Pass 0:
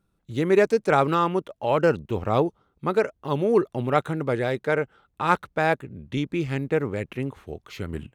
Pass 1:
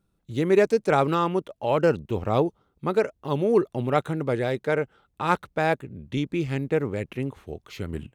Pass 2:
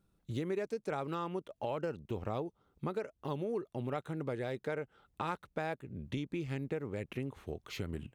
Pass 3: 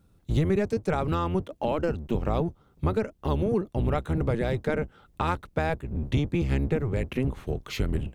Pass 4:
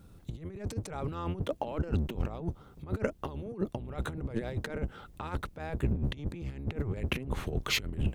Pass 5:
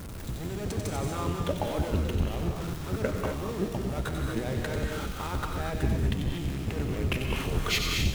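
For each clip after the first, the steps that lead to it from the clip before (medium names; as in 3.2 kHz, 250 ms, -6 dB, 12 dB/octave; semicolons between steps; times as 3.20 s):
peaking EQ 1.4 kHz -3 dB 1.4 oct
compression 5:1, threshold -33 dBFS, peak gain reduction 17 dB; trim -2 dB
octave divider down 1 oct, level +3 dB; trim +9 dB
compressor with a negative ratio -32 dBFS, ratio -0.5
jump at every zero crossing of -35.5 dBFS; feedback echo behind a high-pass 92 ms, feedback 59%, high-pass 2.7 kHz, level -5 dB; gated-style reverb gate 270 ms rising, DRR 2 dB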